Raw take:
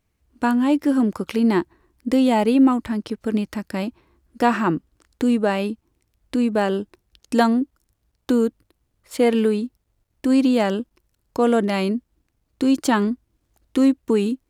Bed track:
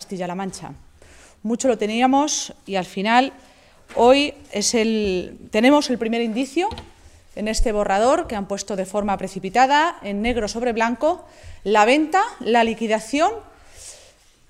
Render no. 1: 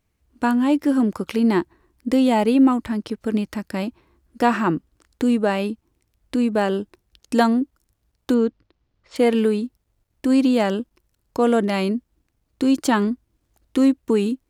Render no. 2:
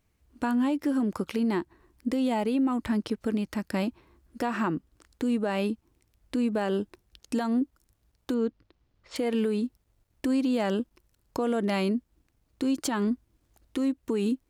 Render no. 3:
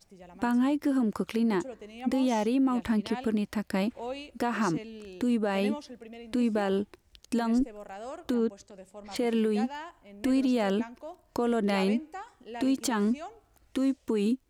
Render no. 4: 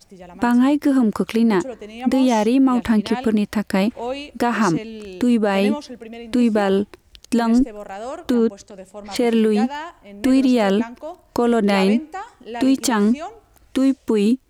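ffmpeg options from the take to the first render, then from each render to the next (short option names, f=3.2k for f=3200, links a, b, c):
-filter_complex "[0:a]asettb=1/sr,asplit=3[a][b][c];[a]atrim=end=8.344[d];[b]atrim=start=8.34:end=9.16,asetpts=PTS-STARTPTS,afade=t=in:d=0.004:c=qsin,afade=t=out:st=0.816:d=0.004:c=qsin,lowpass=f=5.4k:w=0.5412,lowpass=f=5.4k:w=1.3066[e];[c]atrim=start=9.156[f];[d][e]acrossfade=d=0.004:c1=hsin:c2=qsin[g];[g][f]acrossfade=d=0.004:c1=qsin:c2=hsin"
-af "acompressor=threshold=-18dB:ratio=6,alimiter=limit=-19dB:level=0:latency=1:release=304"
-filter_complex "[1:a]volume=-23.5dB[a];[0:a][a]amix=inputs=2:normalize=0"
-af "volume=10dB"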